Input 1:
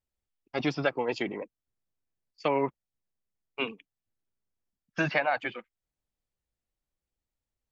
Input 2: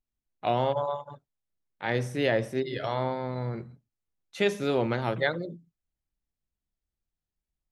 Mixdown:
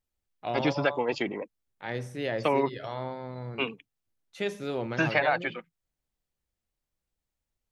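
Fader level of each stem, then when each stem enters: +1.5, −6.0 decibels; 0.00, 0.00 seconds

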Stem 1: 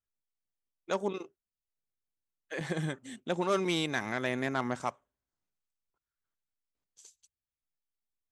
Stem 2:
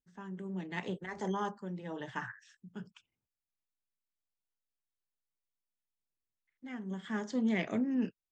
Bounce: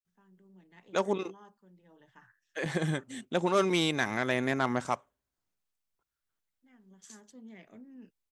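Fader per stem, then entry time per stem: +3.0, −19.0 decibels; 0.05, 0.00 seconds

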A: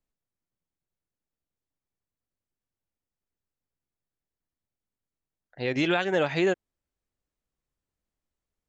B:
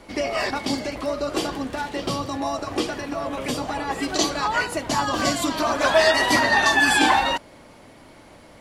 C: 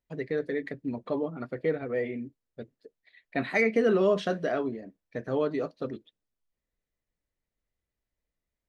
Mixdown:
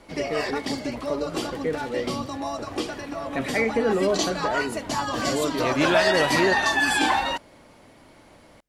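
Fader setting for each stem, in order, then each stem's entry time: +1.5, −4.0, +0.5 decibels; 0.00, 0.00, 0.00 seconds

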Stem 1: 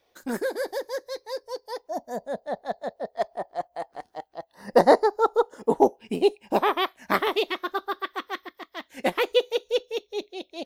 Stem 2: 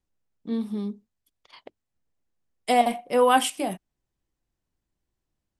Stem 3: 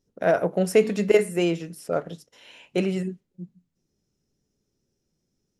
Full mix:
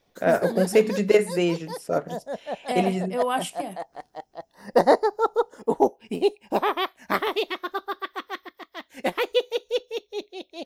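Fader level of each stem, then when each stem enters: −1.0, −6.5, 0.0 decibels; 0.00, 0.00, 0.00 seconds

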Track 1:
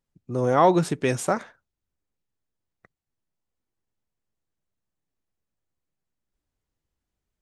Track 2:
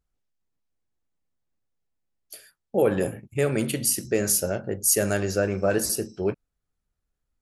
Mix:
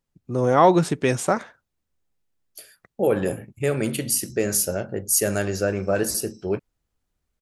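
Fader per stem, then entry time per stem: +2.5, +0.5 decibels; 0.00, 0.25 seconds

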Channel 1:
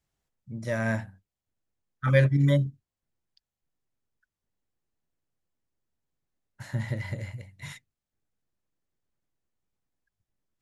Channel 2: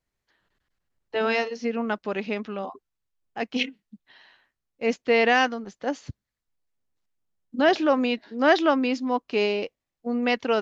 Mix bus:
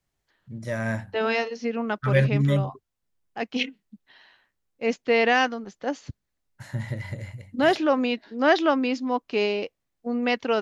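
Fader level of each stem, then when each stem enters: 0.0, −0.5 decibels; 0.00, 0.00 seconds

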